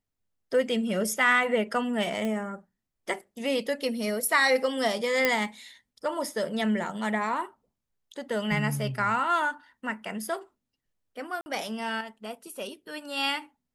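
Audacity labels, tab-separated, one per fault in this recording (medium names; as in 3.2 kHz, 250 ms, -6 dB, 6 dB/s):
2.250000	2.250000	pop -19 dBFS
5.250000	5.250000	pop -8 dBFS
11.410000	11.460000	dropout 50 ms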